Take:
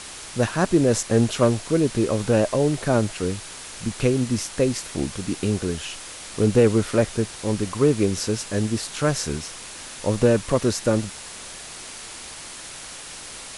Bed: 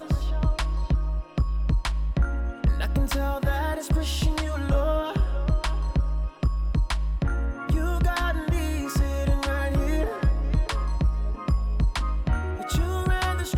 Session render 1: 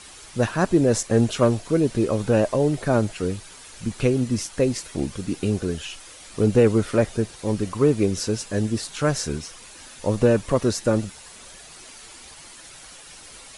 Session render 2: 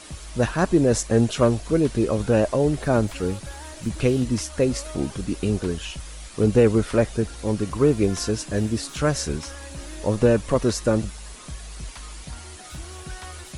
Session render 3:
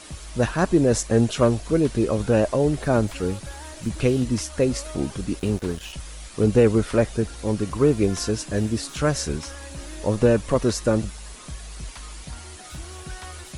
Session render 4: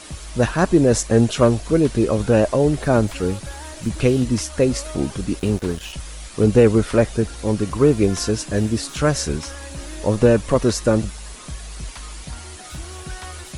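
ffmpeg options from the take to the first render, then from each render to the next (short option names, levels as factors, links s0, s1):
-af "afftdn=nr=9:nf=-38"
-filter_complex "[1:a]volume=0.211[s0];[0:a][s0]amix=inputs=2:normalize=0"
-filter_complex "[0:a]asettb=1/sr,asplit=3[s0][s1][s2];[s0]atrim=end=5.394[s3];[s1]atrim=start=5.39:end=5.93,asetpts=PTS-STARTPTS,afade=t=in:d=0.004:c=qsin,afade=t=out:st=0.536:d=0.004:c=qsin,aeval=exprs='sgn(val(0))*max(abs(val(0))-0.0112,0)':c=same[s4];[s2]atrim=start=5.926[s5];[s3][s4]acrossfade=d=0.004:c1=hsin:c2=qsin[s6];[s6][s5]acrossfade=d=0.004:c1=qsin:c2=hsin"
-af "volume=1.5"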